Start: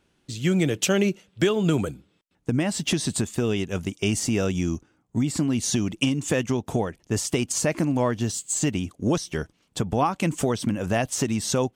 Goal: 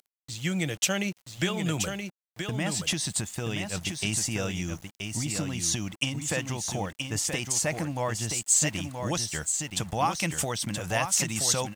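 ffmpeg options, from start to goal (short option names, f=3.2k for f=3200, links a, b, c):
-af "asetnsamples=n=441:p=0,asendcmd='8.48 highshelf g 11',highshelf=f=2.3k:g=6,aecho=1:1:976:0.501,acompressor=mode=upward:threshold=-41dB:ratio=2.5,aeval=exprs='val(0)*gte(abs(val(0)),0.00944)':c=same,equalizer=f=250:t=o:w=0.33:g=-10,equalizer=f=400:t=o:w=0.33:g=-10,equalizer=f=800:t=o:w=0.33:g=3,equalizer=f=2k:t=o:w=0.33:g=3,volume=-5.5dB"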